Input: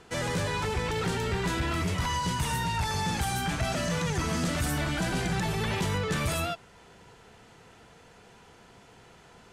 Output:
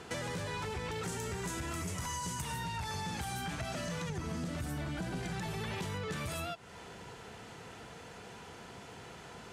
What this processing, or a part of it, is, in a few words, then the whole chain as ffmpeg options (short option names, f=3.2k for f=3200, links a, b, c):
serial compression, peaks first: -filter_complex "[0:a]asettb=1/sr,asplit=3[a][b][c];[a]atrim=end=1.034[d];[b]atrim=start=1.03:end=2.42,asetpts=PTS-STARTPTS,afade=t=in:d=0.004:c=qsin,afade=t=out:st=1.386:d=0.004:c=qsin,highshelf=f=5.3k:t=q:w=1.5:g=8[e];[c]atrim=start=2.416[f];[d][e]acrossfade=d=0.004:c1=hsin:c2=qsin[g];[g][f]acrossfade=d=0.004:c1=qsin:c2=hsin,highpass=55,asettb=1/sr,asplit=3[h][i][j];[h]atrim=end=4.094[k];[i]atrim=start=4.09:end=5.23,asetpts=PTS-STARTPTS,afade=t=in:d=0.004:c=qsin,afade=t=out:st=1.136:d=0.004:c=qsin,tiltshelf=f=720:g=3.5[l];[j]atrim=start=5.226[m];[k][l]acrossfade=d=0.004:c1=hsin:c2=qsin[n];[n][m]acrossfade=d=0.004:c1=qsin:c2=hsin,acompressor=threshold=-37dB:ratio=4,acompressor=threshold=-49dB:ratio=1.5,volume=5dB"